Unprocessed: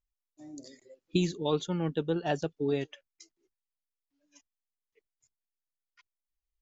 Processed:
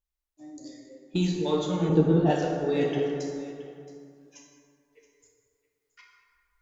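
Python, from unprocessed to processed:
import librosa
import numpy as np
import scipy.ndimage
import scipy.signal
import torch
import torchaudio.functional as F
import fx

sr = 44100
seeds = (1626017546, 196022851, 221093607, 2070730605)

p1 = np.clip(x, -10.0 ** (-25.5 / 20.0), 10.0 ** (-25.5 / 20.0))
p2 = x + (p1 * 10.0 ** (-9.5 / 20.0))
p3 = fx.rev_plate(p2, sr, seeds[0], rt60_s=2.1, hf_ratio=0.45, predelay_ms=0, drr_db=-2.5)
p4 = fx.rider(p3, sr, range_db=10, speed_s=0.5)
p5 = fx.tilt_shelf(p4, sr, db=8.0, hz=970.0, at=(1.89, 2.31))
p6 = p5 + 10.0 ** (-17.0 / 20.0) * np.pad(p5, (int(673 * sr / 1000.0), 0))[:len(p5)]
y = p6 * 10.0 ** (-1.5 / 20.0)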